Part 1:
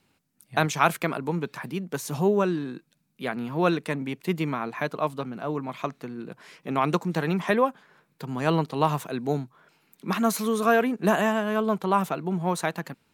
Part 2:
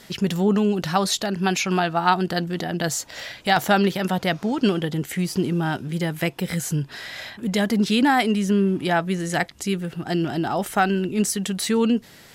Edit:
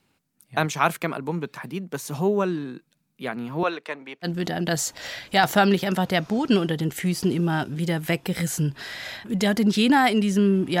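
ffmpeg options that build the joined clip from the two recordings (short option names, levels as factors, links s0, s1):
-filter_complex "[0:a]asettb=1/sr,asplit=3[s0][s1][s2];[s0]atrim=end=3.634[s3];[s1]atrim=start=3.63:end=4.28,asetpts=PTS-STARTPTS,afade=t=in:d=0.004:c=qsin,afade=t=out:st=0.646:d=0.004:c=qsin,acrossover=split=390 5800:gain=0.0708 1 0.224[s4][s5][s6];[s4][s5][s6]amix=inputs=3:normalize=0[s7];[s2]atrim=start=4.276[s8];[s3][s7]acrossfade=d=0.004:c1=hsin:c2=qsin[s9];[s9][s8]acrossfade=d=0.004:c1=qsin:c2=hsin,apad=whole_dur=10.8,atrim=end=10.8,atrim=end=4.28,asetpts=PTS-STARTPTS[s10];[1:a]atrim=start=2.35:end=8.93,asetpts=PTS-STARTPTS[s11];[s10][s11]acrossfade=d=0.06:c1=tri:c2=tri"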